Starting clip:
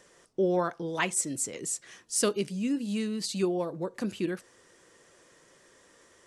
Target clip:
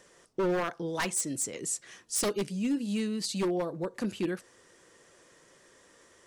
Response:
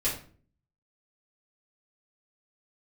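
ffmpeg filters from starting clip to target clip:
-af "aeval=exprs='0.0708*(abs(mod(val(0)/0.0708+3,4)-2)-1)':channel_layout=same"

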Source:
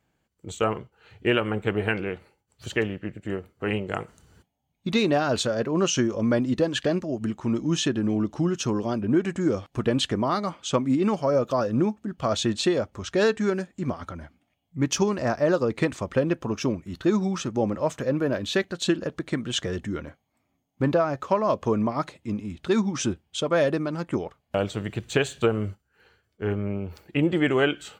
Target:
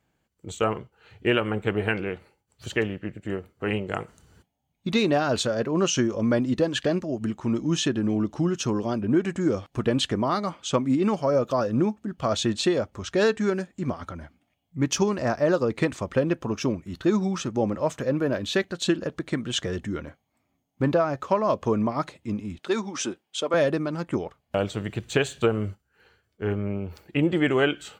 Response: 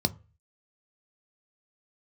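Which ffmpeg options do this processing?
-filter_complex "[0:a]asettb=1/sr,asplit=3[link_01][link_02][link_03];[link_01]atrim=end=22.594[link_04];[link_02]atrim=start=22.59:end=23.54,asetpts=PTS-STARTPTS,afade=type=in:duration=0.004:curve=qsin,afade=type=out:start_time=0.946:duration=0.004:curve=qsin,highpass=330[link_05];[link_03]atrim=start=23.536[link_06];[link_04][link_05]acrossfade=duration=0.004:curve1=hsin:curve2=qsin[link_07];[link_07][link_06]acrossfade=duration=0.004:curve1=qsin:curve2=hsin"

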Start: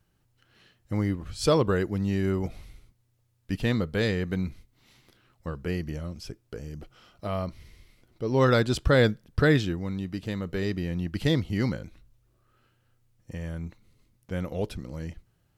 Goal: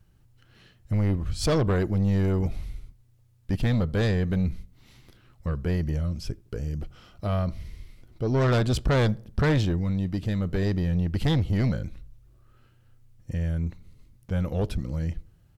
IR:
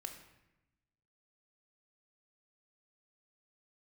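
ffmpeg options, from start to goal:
-filter_complex "[0:a]lowshelf=frequency=160:gain=11.5,asoftclip=type=tanh:threshold=-20.5dB,asplit=2[link_01][link_02];[link_02]adelay=81,lowpass=frequency=890:poles=1,volume=-23.5dB,asplit=2[link_03][link_04];[link_04]adelay=81,lowpass=frequency=890:poles=1,volume=0.5,asplit=2[link_05][link_06];[link_06]adelay=81,lowpass=frequency=890:poles=1,volume=0.5[link_07];[link_01][link_03][link_05][link_07]amix=inputs=4:normalize=0,volume=2dB"

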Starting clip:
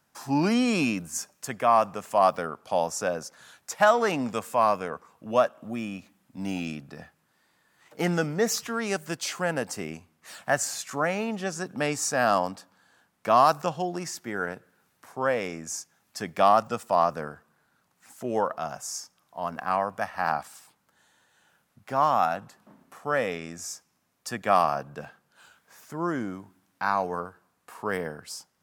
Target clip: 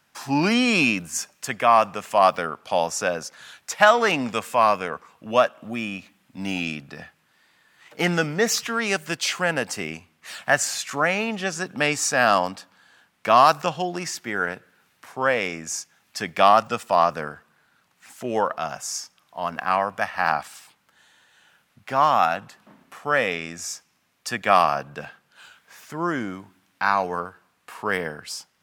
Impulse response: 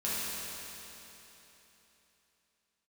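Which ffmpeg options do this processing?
-af "equalizer=frequency=2700:width=0.7:gain=8.5,volume=2dB"

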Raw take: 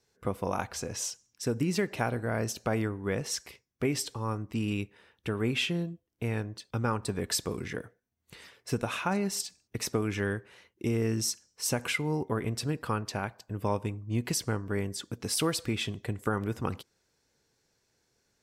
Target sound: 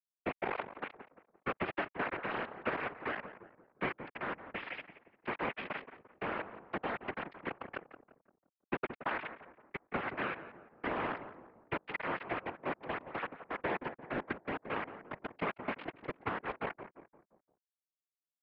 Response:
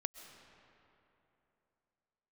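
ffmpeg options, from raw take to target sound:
-filter_complex "[0:a]deesser=0.65,equalizer=frequency=590:width=7.6:gain=5.5,acompressor=threshold=-38dB:ratio=2,aresample=11025,acrusher=bits=4:mix=0:aa=0.000001,aresample=44100,crystalizer=i=5:c=0,asoftclip=type=hard:threshold=-28dB,highpass=frequency=290:width_type=q:width=0.5412,highpass=frequency=290:width_type=q:width=1.307,lowpass=frequency=2400:width_type=q:width=0.5176,lowpass=frequency=2400:width_type=q:width=0.7071,lowpass=frequency=2400:width_type=q:width=1.932,afreqshift=-95,asplit=2[link_01][link_02];[link_02]adelay=173,lowpass=frequency=1300:poles=1,volume=-10dB,asplit=2[link_03][link_04];[link_04]adelay=173,lowpass=frequency=1300:poles=1,volume=0.48,asplit=2[link_05][link_06];[link_06]adelay=173,lowpass=frequency=1300:poles=1,volume=0.48,asplit=2[link_07][link_08];[link_08]adelay=173,lowpass=frequency=1300:poles=1,volume=0.48,asplit=2[link_09][link_10];[link_10]adelay=173,lowpass=frequency=1300:poles=1,volume=0.48[link_11];[link_01][link_03][link_05][link_07][link_09][link_11]amix=inputs=6:normalize=0,afftfilt=real='hypot(re,im)*cos(2*PI*random(0))':imag='hypot(re,im)*sin(2*PI*random(1))':win_size=512:overlap=0.75,volume=12dB"

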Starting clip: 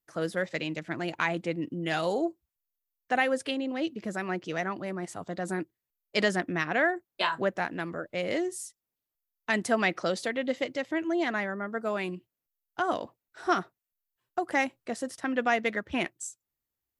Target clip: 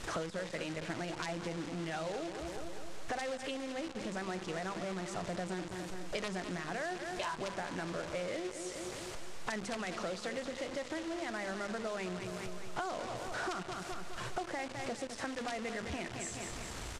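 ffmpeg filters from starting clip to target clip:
ffmpeg -i in.wav -filter_complex "[0:a]aeval=exprs='val(0)+0.5*0.015*sgn(val(0))':channel_layout=same,highshelf=frequency=2000:gain=-8,aeval=exprs='(mod(6.31*val(0)+1,2)-1)/6.31':channel_layout=same,alimiter=limit=-22.5dB:level=0:latency=1:release=28,bandreject=frequency=50:width_type=h:width=6,bandreject=frequency=100:width_type=h:width=6,bandreject=frequency=150:width_type=h:width=6,bandreject=frequency=200:width_type=h:width=6,bandreject=frequency=250:width_type=h:width=6,bandreject=frequency=300:width_type=h:width=6,bandreject=frequency=350:width_type=h:width=6,bandreject=frequency=400:width_type=h:width=6,bandreject=frequency=450:width_type=h:width=6,bandreject=frequency=500:width_type=h:width=6,asplit=2[link_01][link_02];[link_02]aecho=0:1:207|414|621|828|1035:0.282|0.135|0.0649|0.0312|0.015[link_03];[link_01][link_03]amix=inputs=2:normalize=0,acompressor=threshold=-42dB:ratio=10,acrusher=bits=9:dc=4:mix=0:aa=0.000001,lowpass=frequency=8500:width=0.5412,lowpass=frequency=8500:width=1.3066,equalizer=frequency=270:width=2:gain=-5,volume=7dB" out.wav

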